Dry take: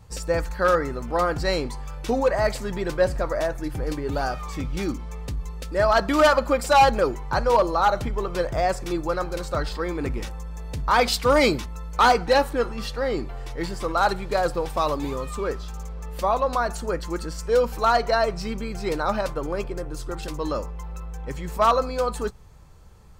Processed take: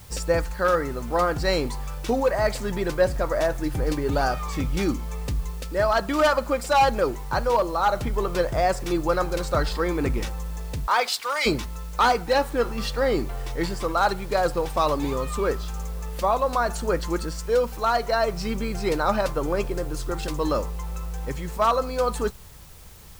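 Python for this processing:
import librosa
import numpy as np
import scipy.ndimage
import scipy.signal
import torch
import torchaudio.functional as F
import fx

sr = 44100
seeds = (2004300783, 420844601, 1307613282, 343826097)

y = fx.highpass(x, sr, hz=fx.line((10.86, 390.0), (11.45, 1500.0)), slope=12, at=(10.86, 11.45), fade=0.02)
y = fx.rider(y, sr, range_db=3, speed_s=0.5)
y = fx.dmg_noise_colour(y, sr, seeds[0], colour='white', level_db=-51.0)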